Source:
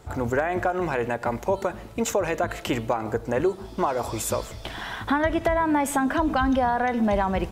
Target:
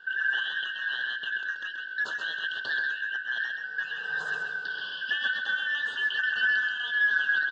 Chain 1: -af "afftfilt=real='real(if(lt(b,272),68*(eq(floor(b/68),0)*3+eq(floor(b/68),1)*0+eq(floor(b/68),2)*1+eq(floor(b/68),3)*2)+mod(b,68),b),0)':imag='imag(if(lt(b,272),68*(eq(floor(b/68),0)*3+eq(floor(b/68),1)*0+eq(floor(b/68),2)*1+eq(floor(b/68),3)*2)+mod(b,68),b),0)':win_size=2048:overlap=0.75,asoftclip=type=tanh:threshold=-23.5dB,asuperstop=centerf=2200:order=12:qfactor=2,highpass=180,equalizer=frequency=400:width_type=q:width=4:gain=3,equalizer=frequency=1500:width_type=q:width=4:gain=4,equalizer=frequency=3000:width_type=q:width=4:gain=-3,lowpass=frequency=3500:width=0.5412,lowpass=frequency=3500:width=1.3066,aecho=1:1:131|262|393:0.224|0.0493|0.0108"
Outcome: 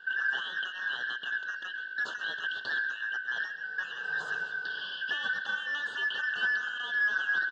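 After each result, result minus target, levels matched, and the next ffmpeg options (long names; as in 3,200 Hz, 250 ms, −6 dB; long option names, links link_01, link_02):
echo-to-direct −8 dB; soft clipping: distortion +8 dB
-af "afftfilt=real='real(if(lt(b,272),68*(eq(floor(b/68),0)*3+eq(floor(b/68),1)*0+eq(floor(b/68),2)*1+eq(floor(b/68),3)*2)+mod(b,68),b),0)':imag='imag(if(lt(b,272),68*(eq(floor(b/68),0)*3+eq(floor(b/68),1)*0+eq(floor(b/68),2)*1+eq(floor(b/68),3)*2)+mod(b,68),b),0)':win_size=2048:overlap=0.75,asoftclip=type=tanh:threshold=-23.5dB,asuperstop=centerf=2200:order=12:qfactor=2,highpass=180,equalizer=frequency=400:width_type=q:width=4:gain=3,equalizer=frequency=1500:width_type=q:width=4:gain=4,equalizer=frequency=3000:width_type=q:width=4:gain=-3,lowpass=frequency=3500:width=0.5412,lowpass=frequency=3500:width=1.3066,aecho=1:1:131|262|393:0.562|0.124|0.0272"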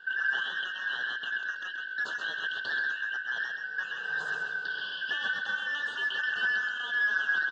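soft clipping: distortion +8 dB
-af "afftfilt=real='real(if(lt(b,272),68*(eq(floor(b/68),0)*3+eq(floor(b/68),1)*0+eq(floor(b/68),2)*1+eq(floor(b/68),3)*2)+mod(b,68),b),0)':imag='imag(if(lt(b,272),68*(eq(floor(b/68),0)*3+eq(floor(b/68),1)*0+eq(floor(b/68),2)*1+eq(floor(b/68),3)*2)+mod(b,68),b),0)':win_size=2048:overlap=0.75,asoftclip=type=tanh:threshold=-16.5dB,asuperstop=centerf=2200:order=12:qfactor=2,highpass=180,equalizer=frequency=400:width_type=q:width=4:gain=3,equalizer=frequency=1500:width_type=q:width=4:gain=4,equalizer=frequency=3000:width_type=q:width=4:gain=-3,lowpass=frequency=3500:width=0.5412,lowpass=frequency=3500:width=1.3066,aecho=1:1:131|262|393:0.562|0.124|0.0272"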